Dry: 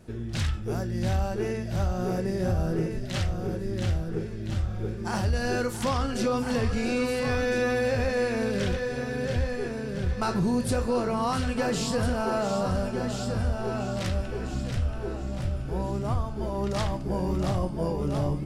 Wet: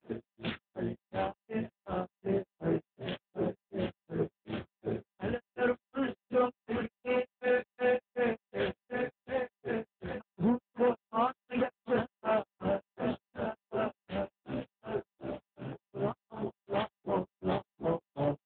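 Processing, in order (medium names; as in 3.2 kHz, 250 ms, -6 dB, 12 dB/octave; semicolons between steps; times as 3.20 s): high-pass 200 Hz 12 dB/octave; hum notches 50/100/150/200/250/300 Hz; granulator 224 ms, grains 2.7 per s, pitch spread up and down by 0 st; AM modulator 280 Hz, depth 50%; saturation -29 dBFS, distortion -13 dB; trim +8.5 dB; AMR-NB 6.7 kbps 8 kHz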